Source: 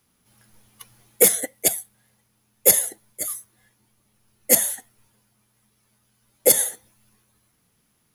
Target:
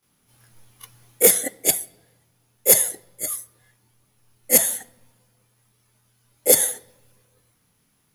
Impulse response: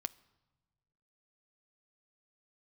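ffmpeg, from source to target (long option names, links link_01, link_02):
-filter_complex "[0:a]asplit=2[link_01][link_02];[1:a]atrim=start_sample=2205,adelay=26[link_03];[link_02][link_03]afir=irnorm=-1:irlink=0,volume=10.5dB[link_04];[link_01][link_04]amix=inputs=2:normalize=0,volume=-8.5dB"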